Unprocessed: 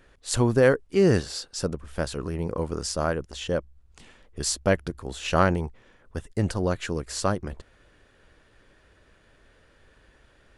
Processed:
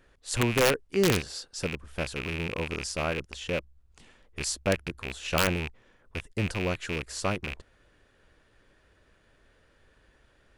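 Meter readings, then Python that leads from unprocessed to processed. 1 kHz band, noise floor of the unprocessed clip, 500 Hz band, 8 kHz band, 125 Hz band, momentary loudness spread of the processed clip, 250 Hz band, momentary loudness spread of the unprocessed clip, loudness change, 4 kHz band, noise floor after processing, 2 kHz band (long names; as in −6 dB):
−4.0 dB, −60 dBFS, −5.0 dB, −2.5 dB, −5.0 dB, 12 LU, −5.0 dB, 13 LU, −3.5 dB, +1.0 dB, −64 dBFS, +1.0 dB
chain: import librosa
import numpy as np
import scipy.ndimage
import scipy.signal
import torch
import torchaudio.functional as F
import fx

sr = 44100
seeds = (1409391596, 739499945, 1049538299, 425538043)

y = fx.rattle_buzz(x, sr, strikes_db=-36.0, level_db=-17.0)
y = (np.mod(10.0 ** (9.5 / 20.0) * y + 1.0, 2.0) - 1.0) / 10.0 ** (9.5 / 20.0)
y = y * 10.0 ** (-4.5 / 20.0)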